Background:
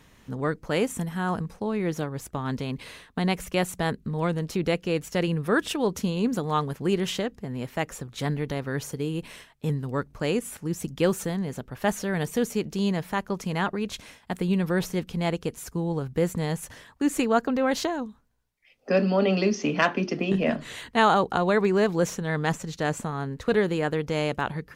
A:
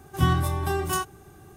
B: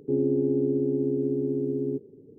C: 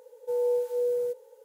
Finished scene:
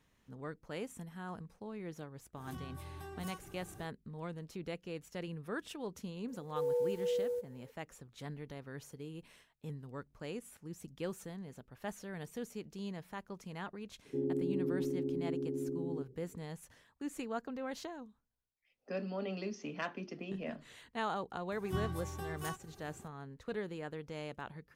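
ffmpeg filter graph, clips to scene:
-filter_complex "[1:a]asplit=2[s0][s1];[0:a]volume=0.141[s2];[s0]acompressor=threshold=0.00891:ratio=6:attack=3.2:release=140:knee=1:detection=peak[s3];[s1]acompressor=mode=upward:threshold=0.0178:ratio=4:attack=11:release=110:knee=2.83:detection=peak[s4];[s3]atrim=end=1.56,asetpts=PTS-STARTPTS,volume=0.596,afade=t=in:d=0.1,afade=t=out:st=1.46:d=0.1,adelay=2340[s5];[3:a]atrim=end=1.44,asetpts=PTS-STARTPTS,volume=0.447,afade=t=in:d=0.004:c=hsin,afade=t=out:st=1.436:d=0.004:c=hsin,adelay=6280[s6];[2:a]atrim=end=2.38,asetpts=PTS-STARTPTS,volume=0.299,afade=t=in:d=0.004:c=hsin,afade=t=out:st=2.376:d=0.004:c=hsin,adelay=14050[s7];[s4]atrim=end=1.56,asetpts=PTS-STARTPTS,volume=0.15,afade=t=in:d=0.004:c=hsin,afade=t=out:st=1.556:d=0.004:c=hsin,adelay=21520[s8];[s2][s5][s6][s7][s8]amix=inputs=5:normalize=0"

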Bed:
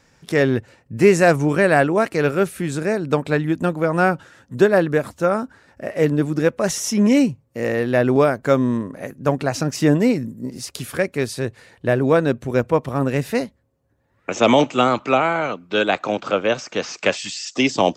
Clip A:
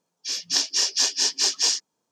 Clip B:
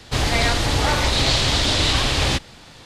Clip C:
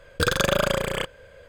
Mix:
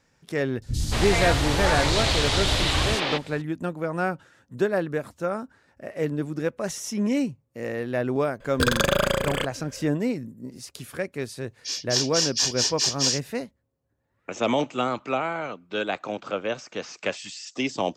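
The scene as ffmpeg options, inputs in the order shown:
-filter_complex "[0:a]volume=0.355[s0];[2:a]acrossover=split=250|4600[s1][s2][s3];[s3]adelay=50[s4];[s2]adelay=230[s5];[s1][s5][s4]amix=inputs=3:normalize=0,atrim=end=2.85,asetpts=PTS-STARTPTS,volume=0.708,afade=t=in:d=0.004:c=hsin,afade=t=out:st=2.846:d=0.004:c=hsin,adelay=570[s6];[3:a]atrim=end=1.48,asetpts=PTS-STARTPTS,afade=t=in:d=0.004:c=hsin,afade=t=out:st=1.476:d=0.004:c=hsin,adelay=8400[s7];[1:a]atrim=end=2.11,asetpts=PTS-STARTPTS,volume=0.794,afade=t=in:d=0.004:c=hsin,afade=t=out:st=2.106:d=0.004:c=hsin,adelay=11400[s8];[s0][s6][s7][s8]amix=inputs=4:normalize=0"

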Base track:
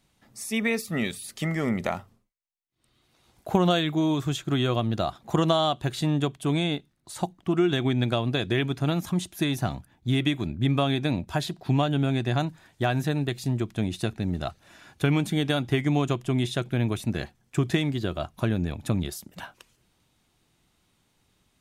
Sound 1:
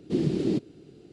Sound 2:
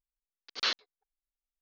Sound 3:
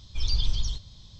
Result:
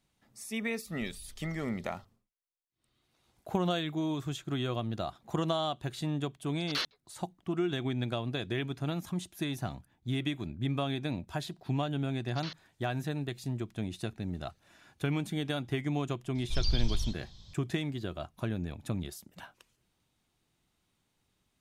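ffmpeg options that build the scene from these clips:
-filter_complex "[3:a]asplit=2[s0][s1];[2:a]asplit=2[s2][s3];[0:a]volume=0.376[s4];[s0]acompressor=threshold=0.02:ratio=6:attack=3.2:release=140:knee=1:detection=peak[s5];[s2]aeval=exprs='0.178*sin(PI/2*1.58*val(0)/0.178)':c=same[s6];[s3]alimiter=level_in=1.06:limit=0.0631:level=0:latency=1:release=285,volume=0.944[s7];[s5]atrim=end=1.19,asetpts=PTS-STARTPTS,volume=0.188,afade=t=in:d=0.004:c=hsin,afade=t=out:st=1.186:d=0.004:c=hsin,adelay=860[s8];[s6]atrim=end=1.61,asetpts=PTS-STARTPTS,volume=0.316,afade=t=in:d=0.004:c=hsin,afade=t=out:st=1.606:d=0.004:c=hsin,adelay=6120[s9];[s7]atrim=end=1.61,asetpts=PTS-STARTPTS,volume=0.473,afade=t=in:d=0.004:c=hsin,afade=t=out:st=1.606:d=0.004:c=hsin,adelay=11800[s10];[s1]atrim=end=1.19,asetpts=PTS-STARTPTS,volume=0.631,afade=t=in:d=0.004:c=hsin,afade=t=out:st=1.186:d=0.004:c=hsin,adelay=16350[s11];[s4][s8][s9][s10][s11]amix=inputs=5:normalize=0"

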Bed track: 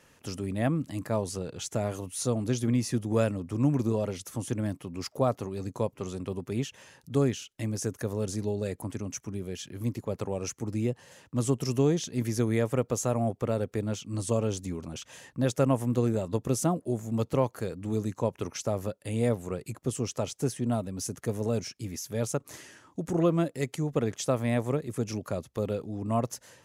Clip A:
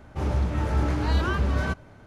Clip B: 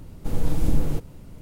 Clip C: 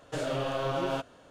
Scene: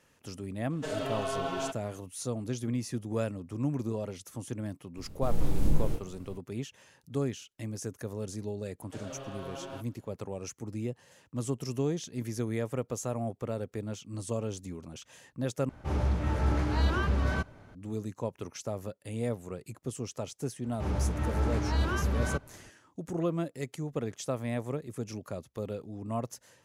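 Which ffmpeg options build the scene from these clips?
-filter_complex "[3:a]asplit=2[s0][s1];[1:a]asplit=2[s2][s3];[0:a]volume=0.501[s4];[s0]aecho=1:1:4.6:0.92[s5];[2:a]flanger=delay=19:depth=4.8:speed=2.5[s6];[s3]aresample=32000,aresample=44100[s7];[s4]asplit=2[s8][s9];[s8]atrim=end=15.694[s10];[s2]atrim=end=2.06,asetpts=PTS-STARTPTS,volume=0.668[s11];[s9]atrim=start=17.746[s12];[s5]atrim=end=1.3,asetpts=PTS-STARTPTS,volume=0.562,afade=t=in:d=0.004:c=hsin,afade=t=out:st=1.296:d=0.004:c=hsin,adelay=700[s13];[s6]atrim=end=1.41,asetpts=PTS-STARTPTS,volume=0.75,afade=t=in:d=0.004:c=hsin,afade=t=out:st=1.406:d=0.004:c=hsin,adelay=219177S[s14];[s1]atrim=end=1.3,asetpts=PTS-STARTPTS,volume=0.251,afade=t=in:d=0.004:c=hsin,afade=t=out:st=1.296:d=0.004:c=hsin,adelay=8800[s15];[s7]atrim=end=2.06,asetpts=PTS-STARTPTS,volume=0.562,afade=t=in:d=0.004:c=hsin,afade=t=out:st=2.056:d=0.004:c=hsin,adelay=20640[s16];[s10][s11]acrossfade=d=0.004:c1=hsin:c2=hsin[s17];[s17][s12]acrossfade=d=0.004:c1=hsin:c2=hsin[s18];[s18][s13][s14][s15][s16]amix=inputs=5:normalize=0"

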